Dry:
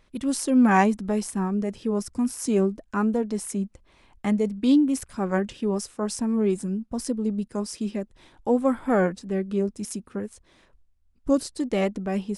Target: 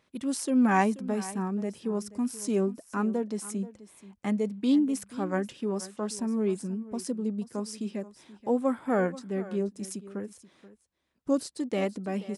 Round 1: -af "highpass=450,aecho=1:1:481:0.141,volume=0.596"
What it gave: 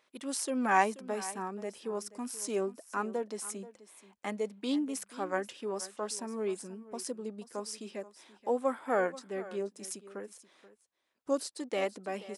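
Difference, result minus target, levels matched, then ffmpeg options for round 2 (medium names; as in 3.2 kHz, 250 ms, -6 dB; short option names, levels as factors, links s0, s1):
125 Hz band -8.5 dB
-af "highpass=130,aecho=1:1:481:0.141,volume=0.596"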